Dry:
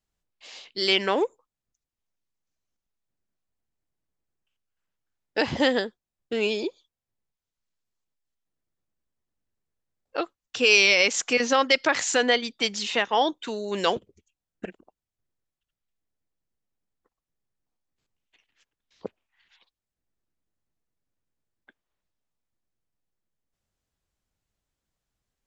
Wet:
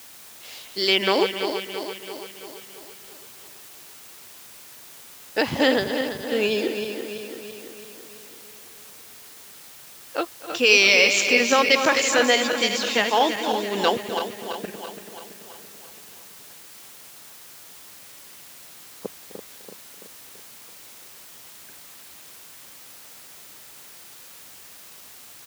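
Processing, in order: regenerating reverse delay 0.167 s, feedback 75%, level -7.5 dB; in parallel at -8 dB: requantised 6-bit, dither triangular; on the sum: HPF 80 Hz; echo 0.255 s -16.5 dB; gain -1 dB

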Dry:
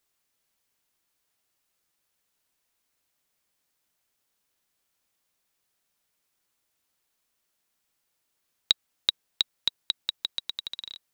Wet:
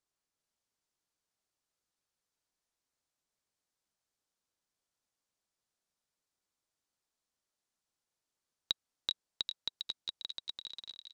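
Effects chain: LPF 7500 Hz 12 dB/oct; bell 2500 Hz -6.5 dB 1.4 oct; thin delay 0.402 s, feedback 41%, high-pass 2200 Hz, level -5 dB; gain -7.5 dB

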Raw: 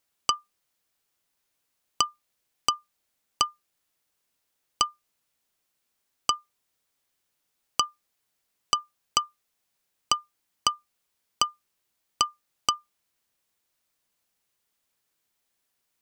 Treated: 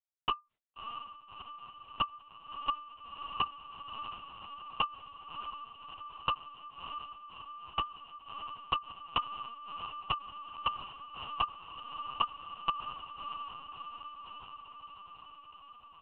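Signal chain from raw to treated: treble ducked by the level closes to 910 Hz, closed at -25 dBFS; gate -59 dBFS, range -26 dB; in parallel at -9 dB: hard clip -18 dBFS, distortion -6 dB; on the sum: flange 0.71 Hz, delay 5.8 ms, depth 7.8 ms, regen +57%; on a send: diffused feedback echo 0.642 s, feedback 70%, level -7 dB; on the sum: LPC vocoder at 8 kHz pitch kept

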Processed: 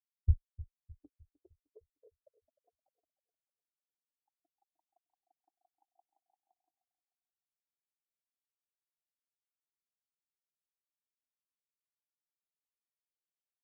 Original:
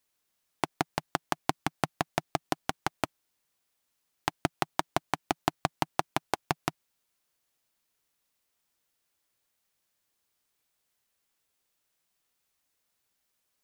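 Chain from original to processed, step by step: tape start at the beginning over 2.96 s; tone controls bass -11 dB, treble +9 dB; notch 470 Hz, Q 15; limiter -14.5 dBFS, peak gain reduction 14.5 dB; on a send: analogue delay 0.305 s, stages 2048, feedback 78%, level -4.5 dB; on the sum: spectral expander 4:1

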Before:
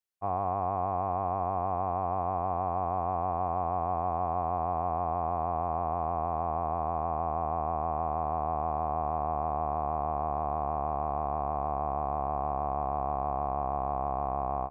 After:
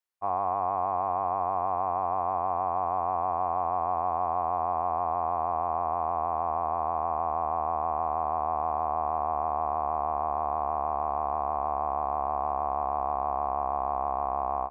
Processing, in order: graphic EQ 125/1000/2000 Hz -12/+6/+3 dB; gain -1.5 dB

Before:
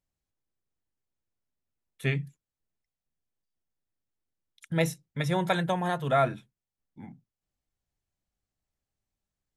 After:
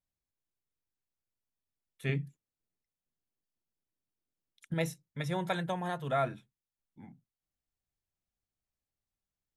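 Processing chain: 2.09–4.74 bell 280 Hz +6.5 dB 2.2 oct; gain -6.5 dB

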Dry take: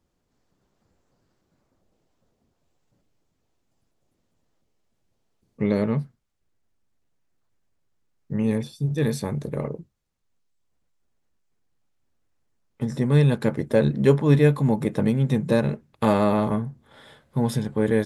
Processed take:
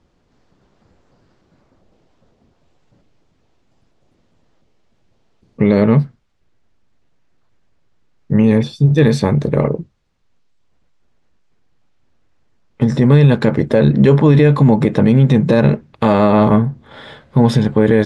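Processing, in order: LPF 4800 Hz 12 dB/oct; maximiser +14.5 dB; gain -1 dB

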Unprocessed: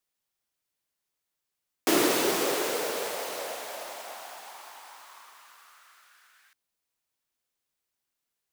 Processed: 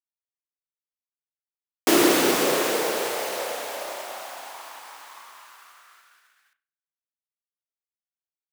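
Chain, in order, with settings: spring tank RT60 1.4 s, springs 32 ms, chirp 75 ms, DRR 5 dB; expander -52 dBFS; gain +4.5 dB

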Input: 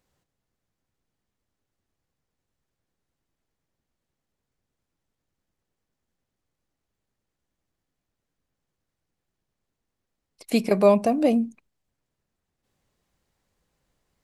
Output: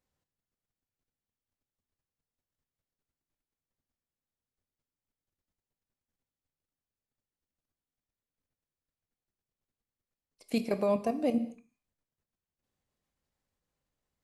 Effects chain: level quantiser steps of 10 dB; non-linear reverb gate 0.27 s falling, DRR 10 dB; gain -6.5 dB

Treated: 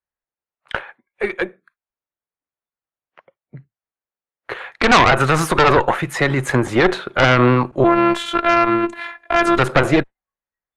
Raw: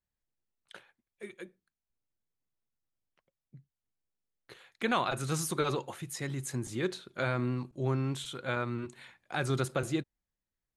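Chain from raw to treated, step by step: three-band isolator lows -14 dB, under 460 Hz, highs -23 dB, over 2300 Hz; spectral noise reduction 24 dB; 7.84–9.58 robotiser 342 Hz; added harmonics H 5 -14 dB, 6 -8 dB, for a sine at -18.5 dBFS; maximiser +24 dB; gain -1 dB

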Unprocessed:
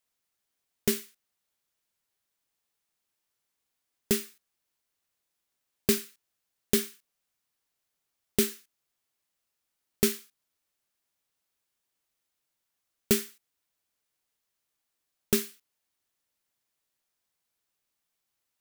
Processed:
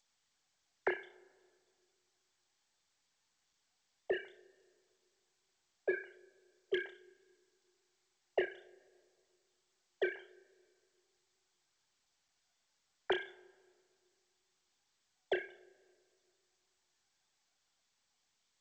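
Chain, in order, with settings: sine-wave speech; fixed phaser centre 1700 Hz, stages 8; in parallel at -6 dB: soft clip -33.5 dBFS, distortion -14 dB; on the sum: flutter echo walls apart 5.3 m, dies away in 0.22 s; on a send at -21 dB: reverb RT60 1.9 s, pre-delay 4 ms; on the sum: gain +3 dB; G.722 64 kbps 16000 Hz

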